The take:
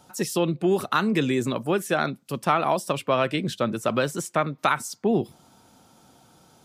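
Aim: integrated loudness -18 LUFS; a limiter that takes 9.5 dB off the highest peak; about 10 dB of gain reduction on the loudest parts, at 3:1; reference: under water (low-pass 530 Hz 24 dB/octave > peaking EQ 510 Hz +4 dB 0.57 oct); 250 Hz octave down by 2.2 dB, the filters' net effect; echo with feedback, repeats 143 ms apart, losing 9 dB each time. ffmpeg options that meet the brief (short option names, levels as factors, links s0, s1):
-af "equalizer=f=250:t=o:g=-3.5,acompressor=threshold=0.0282:ratio=3,alimiter=level_in=1.06:limit=0.0631:level=0:latency=1,volume=0.944,lowpass=f=530:w=0.5412,lowpass=f=530:w=1.3066,equalizer=f=510:t=o:w=0.57:g=4,aecho=1:1:143|286|429|572:0.355|0.124|0.0435|0.0152,volume=8.91"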